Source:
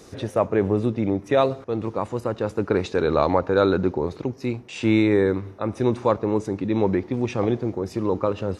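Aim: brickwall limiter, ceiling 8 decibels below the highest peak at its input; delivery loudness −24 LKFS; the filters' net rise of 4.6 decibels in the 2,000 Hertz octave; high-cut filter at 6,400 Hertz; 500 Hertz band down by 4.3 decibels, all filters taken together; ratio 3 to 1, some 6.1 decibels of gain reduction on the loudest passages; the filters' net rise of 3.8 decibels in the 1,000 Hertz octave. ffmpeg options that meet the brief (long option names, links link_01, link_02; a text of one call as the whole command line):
ffmpeg -i in.wav -af "lowpass=6400,equalizer=frequency=500:width_type=o:gain=-7,equalizer=frequency=1000:width_type=o:gain=5.5,equalizer=frequency=2000:width_type=o:gain=4.5,acompressor=threshold=-22dB:ratio=3,volume=6.5dB,alimiter=limit=-11dB:level=0:latency=1" out.wav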